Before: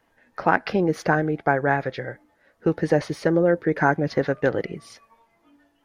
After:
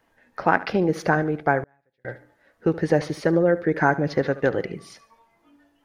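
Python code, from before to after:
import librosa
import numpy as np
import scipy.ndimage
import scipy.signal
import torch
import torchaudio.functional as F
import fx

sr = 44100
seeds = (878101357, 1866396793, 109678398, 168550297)

p1 = x + fx.echo_feedback(x, sr, ms=73, feedback_pct=39, wet_db=-17, dry=0)
y = fx.gate_flip(p1, sr, shuts_db=-26.0, range_db=-41, at=(1.63, 2.05))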